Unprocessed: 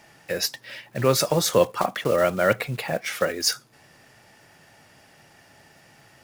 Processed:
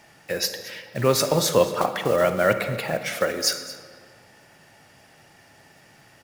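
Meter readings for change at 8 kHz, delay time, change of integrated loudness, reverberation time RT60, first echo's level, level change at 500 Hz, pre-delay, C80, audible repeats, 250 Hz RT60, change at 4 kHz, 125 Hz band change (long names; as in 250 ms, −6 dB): +0.5 dB, 224 ms, +0.5 dB, 2.0 s, −17.5 dB, +1.0 dB, 36 ms, 10.0 dB, 1, 1.9 s, +0.5 dB, 0.0 dB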